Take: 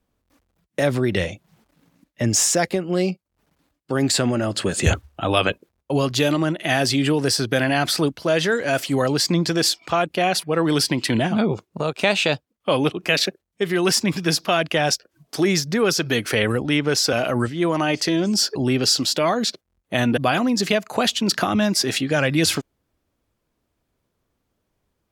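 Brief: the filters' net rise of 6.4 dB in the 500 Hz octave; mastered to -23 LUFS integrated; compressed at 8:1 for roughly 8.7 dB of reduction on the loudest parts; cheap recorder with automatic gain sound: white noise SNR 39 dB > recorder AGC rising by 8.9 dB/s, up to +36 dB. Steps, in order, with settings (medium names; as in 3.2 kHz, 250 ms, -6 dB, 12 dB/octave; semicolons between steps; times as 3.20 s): peaking EQ 500 Hz +8 dB; compression 8:1, threshold -19 dBFS; white noise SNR 39 dB; recorder AGC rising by 8.9 dB/s, up to +36 dB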